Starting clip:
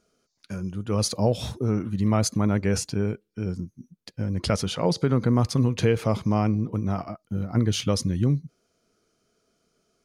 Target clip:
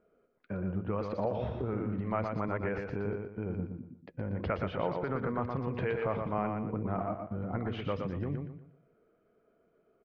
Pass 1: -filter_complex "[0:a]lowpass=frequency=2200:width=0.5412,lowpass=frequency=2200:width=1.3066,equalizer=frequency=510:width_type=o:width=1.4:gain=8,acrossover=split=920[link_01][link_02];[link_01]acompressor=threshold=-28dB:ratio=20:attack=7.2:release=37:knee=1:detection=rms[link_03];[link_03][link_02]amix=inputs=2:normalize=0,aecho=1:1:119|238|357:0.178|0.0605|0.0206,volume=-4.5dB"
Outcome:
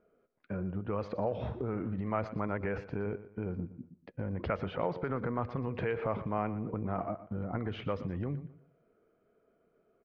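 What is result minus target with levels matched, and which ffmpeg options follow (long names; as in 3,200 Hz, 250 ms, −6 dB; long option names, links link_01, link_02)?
echo-to-direct −10 dB
-filter_complex "[0:a]lowpass=frequency=2200:width=0.5412,lowpass=frequency=2200:width=1.3066,equalizer=frequency=510:width_type=o:width=1.4:gain=8,acrossover=split=920[link_01][link_02];[link_01]acompressor=threshold=-28dB:ratio=20:attack=7.2:release=37:knee=1:detection=rms[link_03];[link_03][link_02]amix=inputs=2:normalize=0,aecho=1:1:119|238|357|476:0.562|0.191|0.065|0.0221,volume=-4.5dB"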